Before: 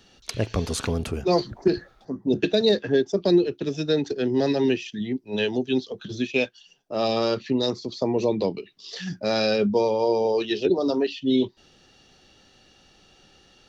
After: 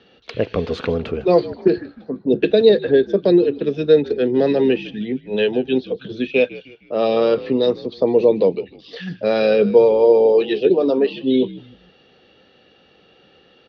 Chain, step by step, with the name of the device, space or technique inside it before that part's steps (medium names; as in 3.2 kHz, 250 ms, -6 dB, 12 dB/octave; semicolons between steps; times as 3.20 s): frequency-shifting delay pedal into a guitar cabinet (frequency-shifting echo 154 ms, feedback 42%, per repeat -69 Hz, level -17.5 dB; cabinet simulation 95–3600 Hz, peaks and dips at 110 Hz -6 dB, 480 Hz +9 dB, 900 Hz -3 dB); trim +3.5 dB